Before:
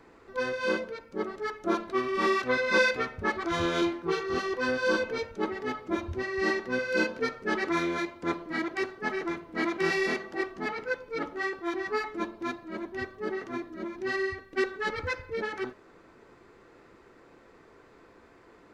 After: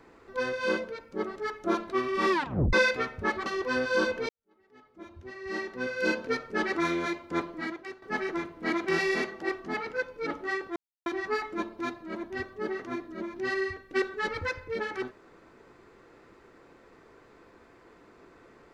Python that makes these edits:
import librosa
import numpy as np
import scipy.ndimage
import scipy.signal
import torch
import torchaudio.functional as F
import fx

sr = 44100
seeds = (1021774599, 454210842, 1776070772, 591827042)

y = fx.edit(x, sr, fx.tape_stop(start_s=2.31, length_s=0.42),
    fx.cut(start_s=3.46, length_s=0.92),
    fx.fade_in_span(start_s=5.21, length_s=1.88, curve='qua'),
    fx.fade_out_to(start_s=8.46, length_s=0.48, curve='qua', floor_db=-12.5),
    fx.insert_silence(at_s=11.68, length_s=0.3), tone=tone)